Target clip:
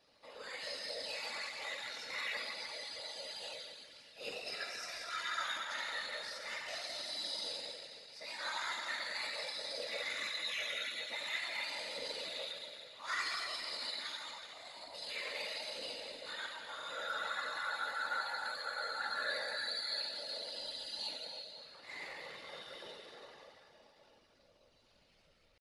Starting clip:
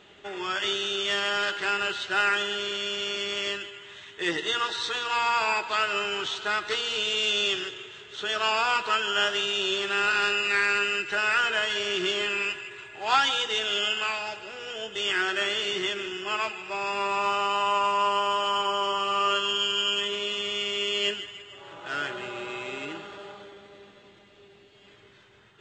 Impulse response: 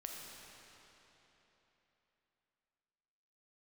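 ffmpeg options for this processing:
-filter_complex "[1:a]atrim=start_sample=2205,asetrate=70560,aresample=44100[a];[0:a][a]afir=irnorm=-1:irlink=0,asetrate=62367,aresample=44100,atempo=0.707107,afftfilt=real='hypot(re,im)*cos(2*PI*random(0))':imag='hypot(re,im)*sin(2*PI*random(1))':win_size=512:overlap=0.75,volume=-2dB"

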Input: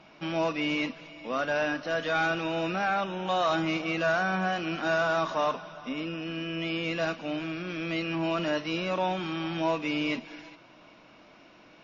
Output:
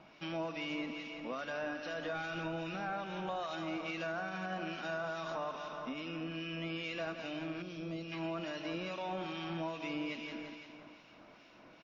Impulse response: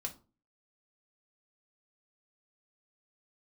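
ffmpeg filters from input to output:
-filter_complex "[0:a]asettb=1/sr,asplit=3[a][b][c];[a]atrim=end=2.134[d];[b]atrim=start=2.13:end=3.4,asetpts=PTS-STARTPTS,afade=t=in:d=0.004:c=qsin,afade=t=out:st=1.266:d=0.004:c=qsin,lowshelf=f=160:g=8.5[e];[c]atrim=start=3.396[f];[d][e]acrossfade=d=0.004:c1=hsin:c2=qsin[g];[g][f]acrossfade=d=0.004:c1=qsin:c2=hsin,aecho=1:1:171|342|513|684|855|1026|1197:0.335|0.191|0.109|0.062|0.0354|0.0202|0.0115,alimiter=limit=-21dB:level=0:latency=1:release=96,acrossover=split=1800[h][i];[h]aeval=exprs='val(0)*(1-0.5/2+0.5/2*cos(2*PI*2.4*n/s))':c=same[j];[i]aeval=exprs='val(0)*(1-0.5/2-0.5/2*cos(2*PI*2.4*n/s))':c=same[k];[j][k]amix=inputs=2:normalize=0,acompressor=threshold=-37dB:ratio=2,asettb=1/sr,asplit=3[l][m][n];[l]atrim=end=7.624[o];[m]atrim=start=7.62:end=8.12,asetpts=PTS-STARTPTS,afade=t=in:d=0.004:c=qsin,afade=t=out:st=0.496:d=0.004:c=qsin,equalizer=f=1.8k:t=o:w=1.4:g=-13[p];[n]atrim=start=8.116[q];[o][p]acrossfade=d=0.004:c1=hsin:c2=qsin[r];[r][q]acrossfade=d=0.004:c1=qsin:c2=hsin,volume=-2.5dB"

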